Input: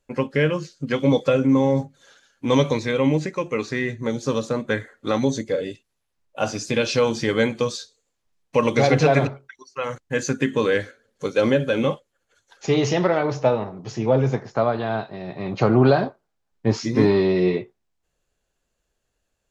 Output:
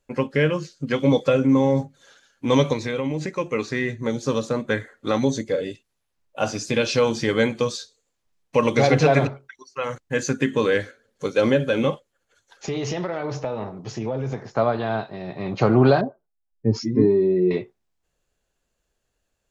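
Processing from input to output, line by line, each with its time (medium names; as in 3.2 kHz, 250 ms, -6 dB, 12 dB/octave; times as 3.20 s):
2.73–3.39 s: compression, threshold -21 dBFS
11.90–14.45 s: compression, threshold -23 dBFS
16.01–17.51 s: spectral contrast enhancement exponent 1.7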